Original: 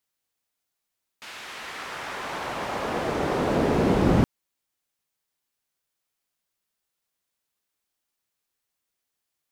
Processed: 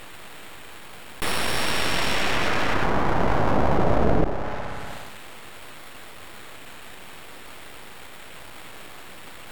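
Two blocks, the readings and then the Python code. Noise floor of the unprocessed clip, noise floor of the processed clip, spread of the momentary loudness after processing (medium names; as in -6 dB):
-83 dBFS, -40 dBFS, 20 LU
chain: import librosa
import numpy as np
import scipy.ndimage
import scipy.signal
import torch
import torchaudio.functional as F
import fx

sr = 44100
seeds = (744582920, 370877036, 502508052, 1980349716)

p1 = np.repeat(x[::8], 8)[:len(x)]
p2 = (np.mod(10.0 ** (10.0 / 20.0) * p1 + 1.0, 2.0) - 1.0) / 10.0 ** (10.0 / 20.0)
p3 = p1 + F.gain(torch.from_numpy(p2), -7.5).numpy()
p4 = scipy.signal.sosfilt(scipy.signal.butter(2, 53.0, 'highpass', fs=sr, output='sos'), p3)
p5 = p4 + fx.echo_tape(p4, sr, ms=62, feedback_pct=75, wet_db=-22.5, lp_hz=4300.0, drive_db=4.0, wow_cents=13, dry=0)
p6 = fx.env_lowpass_down(p5, sr, base_hz=930.0, full_db=-22.0)
p7 = fx.dynamic_eq(p6, sr, hz=760.0, q=3.5, threshold_db=-43.0, ratio=4.0, max_db=-6)
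p8 = np.abs(p7)
y = fx.env_flatten(p8, sr, amount_pct=70)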